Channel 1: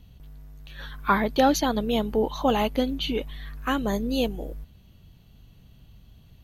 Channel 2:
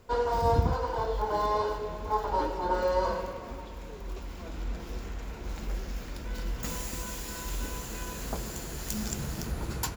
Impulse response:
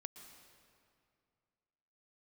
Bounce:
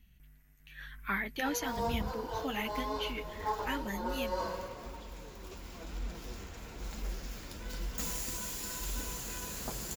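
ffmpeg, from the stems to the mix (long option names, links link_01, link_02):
-filter_complex "[0:a]equalizer=frequency=125:width_type=o:width=1:gain=-5,equalizer=frequency=500:width_type=o:width=1:gain=-10,equalizer=frequency=1000:width_type=o:width=1:gain=-7,equalizer=frequency=2000:width_type=o:width=1:gain=11,equalizer=frequency=4000:width_type=o:width=1:gain=-10,volume=-6.5dB,asplit=2[link_01][link_02];[1:a]adelay=1350,volume=-1.5dB[link_03];[link_02]apad=whole_len=498771[link_04];[link_03][link_04]sidechaincompress=threshold=-37dB:ratio=8:attack=37:release=390[link_05];[link_01][link_05]amix=inputs=2:normalize=0,highshelf=frequency=2900:gain=7.5,flanger=delay=3.7:depth=7.3:regen=-41:speed=1:shape=triangular"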